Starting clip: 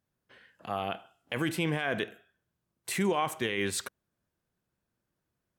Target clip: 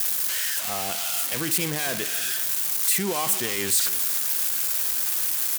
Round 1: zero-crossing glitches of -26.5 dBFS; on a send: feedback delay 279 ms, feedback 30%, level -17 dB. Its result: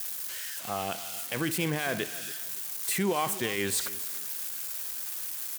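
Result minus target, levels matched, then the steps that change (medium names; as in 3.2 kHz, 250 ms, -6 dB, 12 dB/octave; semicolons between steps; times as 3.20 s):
zero-crossing glitches: distortion -10 dB
change: zero-crossing glitches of -15.5 dBFS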